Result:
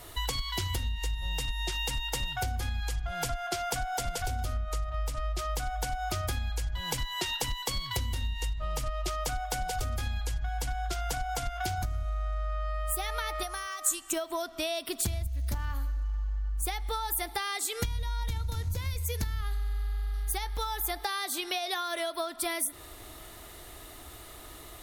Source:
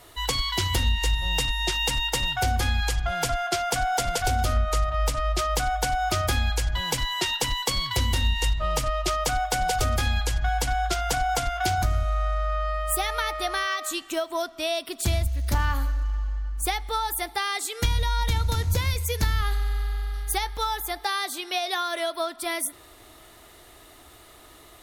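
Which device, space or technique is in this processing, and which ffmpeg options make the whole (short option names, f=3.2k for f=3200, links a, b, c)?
ASMR close-microphone chain: -filter_complex "[0:a]lowshelf=f=120:g=6.5,acompressor=threshold=-30dB:ratio=10,highshelf=f=9.9k:g=6,asettb=1/sr,asplit=3[a][b][c];[a]atrim=end=13.434[d];[b]atrim=start=13.43:end=14.13,asetpts=PTS-STARTPTS,afade=t=in:d=0.004:c=qsin,afade=t=out:st=0.696:d=0.004:c=qsin,equalizer=f=125:t=o:w=1:g=-4,equalizer=f=250:t=o:w=1:g=-8,equalizer=f=500:t=o:w=1:g=-7,equalizer=f=2k:t=o:w=1:g=-5,equalizer=f=4k:t=o:w=1:g=-9,equalizer=f=8k:t=o:w=1:g=9[e];[c]atrim=start=14.126[f];[d][e]acrossfade=d=0.004:c1=hsin:c2=qsin[g];[g][f]acrossfade=d=0.004:c1=qsin:c2=hsin,volume=1dB"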